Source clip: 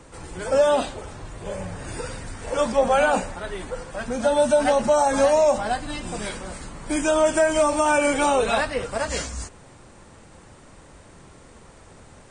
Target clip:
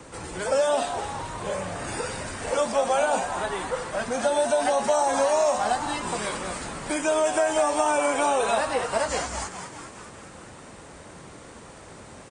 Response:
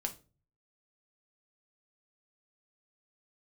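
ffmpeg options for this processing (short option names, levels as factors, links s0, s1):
-filter_complex "[0:a]highpass=f=110:p=1,acrossover=split=500|1000|2700|5700[s0][s1][s2][s3][s4];[s0]acompressor=threshold=0.0112:ratio=4[s5];[s1]acompressor=threshold=0.0398:ratio=4[s6];[s2]acompressor=threshold=0.01:ratio=4[s7];[s3]acompressor=threshold=0.00501:ratio=4[s8];[s4]acompressor=threshold=0.00891:ratio=4[s9];[s5][s6][s7][s8][s9]amix=inputs=5:normalize=0,asplit=2[s10][s11];[s11]asplit=8[s12][s13][s14][s15][s16][s17][s18][s19];[s12]adelay=207,afreqshift=120,volume=0.335[s20];[s13]adelay=414,afreqshift=240,volume=0.207[s21];[s14]adelay=621,afreqshift=360,volume=0.129[s22];[s15]adelay=828,afreqshift=480,volume=0.0794[s23];[s16]adelay=1035,afreqshift=600,volume=0.0495[s24];[s17]adelay=1242,afreqshift=720,volume=0.0305[s25];[s18]adelay=1449,afreqshift=840,volume=0.0191[s26];[s19]adelay=1656,afreqshift=960,volume=0.0117[s27];[s20][s21][s22][s23][s24][s25][s26][s27]amix=inputs=8:normalize=0[s28];[s10][s28]amix=inputs=2:normalize=0,volume=1.58"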